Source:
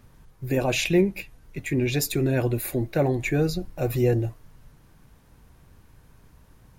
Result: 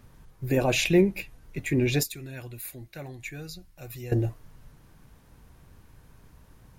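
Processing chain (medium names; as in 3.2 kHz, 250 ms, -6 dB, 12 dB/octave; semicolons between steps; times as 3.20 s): 2.03–4.12 s: amplifier tone stack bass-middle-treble 5-5-5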